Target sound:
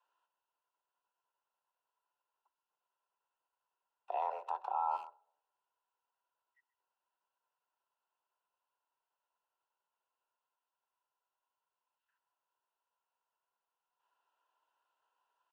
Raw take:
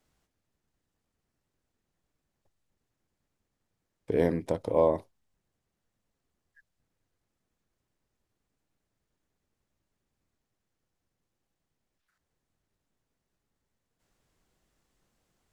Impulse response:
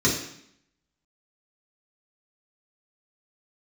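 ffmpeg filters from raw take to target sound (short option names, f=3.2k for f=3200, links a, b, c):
-filter_complex "[0:a]asplit=3[a][b][c];[a]bandpass=f=730:t=q:w=8,volume=0dB[d];[b]bandpass=f=1.09k:t=q:w=8,volume=-6dB[e];[c]bandpass=f=2.44k:t=q:w=8,volume=-9dB[f];[d][e][f]amix=inputs=3:normalize=0,acontrast=78,asplit=2[g][h];[1:a]atrim=start_sample=2205[i];[h][i]afir=irnorm=-1:irlink=0,volume=-37.5dB[j];[g][j]amix=inputs=2:normalize=0,afreqshift=270,asplit=2[k][l];[l]adelay=130,highpass=300,lowpass=3.4k,asoftclip=type=hard:threshold=-24.5dB,volume=-19dB[m];[k][m]amix=inputs=2:normalize=0,alimiter=level_in=1dB:limit=-24dB:level=0:latency=1:release=77,volume=-1dB"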